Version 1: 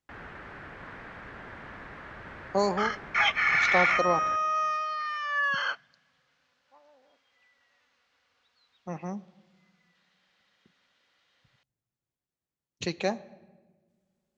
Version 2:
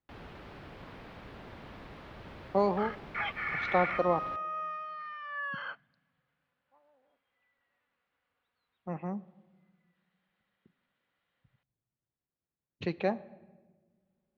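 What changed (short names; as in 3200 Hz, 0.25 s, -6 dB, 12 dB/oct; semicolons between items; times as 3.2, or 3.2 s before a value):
first sound: remove synth low-pass 1700 Hz, resonance Q 2.7; second sound -7.0 dB; master: add air absorption 380 m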